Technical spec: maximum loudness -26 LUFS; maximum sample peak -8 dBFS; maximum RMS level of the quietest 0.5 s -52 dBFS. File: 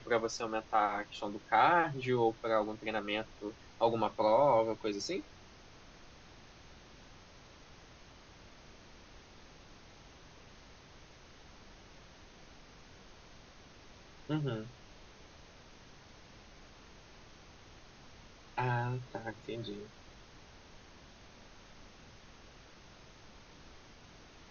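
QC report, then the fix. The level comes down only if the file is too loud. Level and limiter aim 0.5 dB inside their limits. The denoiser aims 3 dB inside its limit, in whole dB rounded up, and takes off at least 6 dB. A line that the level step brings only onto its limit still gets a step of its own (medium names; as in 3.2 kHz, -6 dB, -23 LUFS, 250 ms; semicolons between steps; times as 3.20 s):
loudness -33.5 LUFS: pass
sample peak -15.5 dBFS: pass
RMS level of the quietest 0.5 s -56 dBFS: pass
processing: none needed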